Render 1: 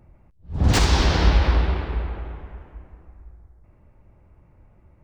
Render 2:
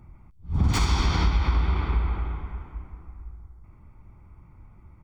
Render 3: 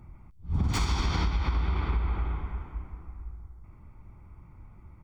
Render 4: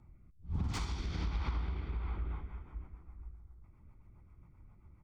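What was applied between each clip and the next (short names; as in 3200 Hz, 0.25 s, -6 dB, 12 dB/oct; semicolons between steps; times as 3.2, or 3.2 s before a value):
compressor 6:1, threshold -22 dBFS, peak gain reduction 11 dB; bell 1400 Hz +2.5 dB; comb 0.9 ms, depth 62%
compressor 5:1, threshold -23 dBFS, peak gain reduction 7 dB
rotary speaker horn 1.2 Hz, later 7.5 Hz, at 1.82; Doppler distortion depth 0.31 ms; gain -7.5 dB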